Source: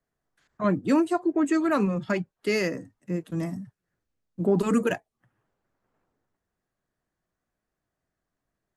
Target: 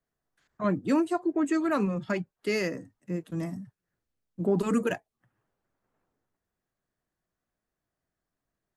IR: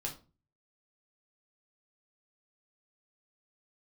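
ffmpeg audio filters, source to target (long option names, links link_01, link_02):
-af "volume=-3dB"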